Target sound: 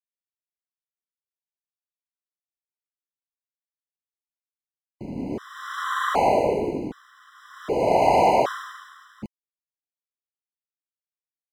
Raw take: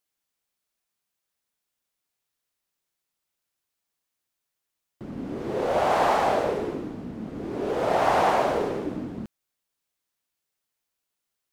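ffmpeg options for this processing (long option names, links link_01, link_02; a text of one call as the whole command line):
ffmpeg -i in.wav -filter_complex "[0:a]aeval=exprs='sgn(val(0))*max(abs(val(0))-0.00299,0)':channel_layout=same,asettb=1/sr,asplit=3[link_01][link_02][link_03];[link_01]atrim=end=5.844[link_04];[link_02]atrim=start=5.84:end=6.76,asetpts=PTS-STARTPTS,afade=type=in:duration=0.004:curve=qsin,afade=type=out:start_time=0.916:duration=0.004:curve=qsin,bandreject=frequency=5200:width=5[link_05];[link_03]atrim=start=6.756[link_06];[link_04][link_05]acrossfade=duration=0.004:curve1=hsin:curve2=qsin[link_07];[link_07][link_06]acrossfade=duration=0.004:curve1=qsin:curve2=hsin,afftfilt=real='re*gt(sin(2*PI*0.65*pts/sr)*(1-2*mod(floor(b*sr/1024/1000),2)),0)':imag='im*gt(sin(2*PI*0.65*pts/sr)*(1-2*mod(floor(b*sr/1024/1000),2)),0)':win_size=1024:overlap=0.75,volume=4.5dB" out.wav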